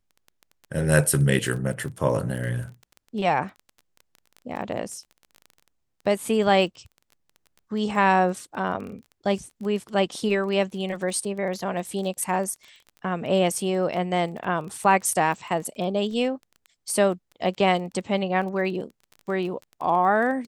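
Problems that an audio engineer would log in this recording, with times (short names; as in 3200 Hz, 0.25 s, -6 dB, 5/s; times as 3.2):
crackle 19/s -33 dBFS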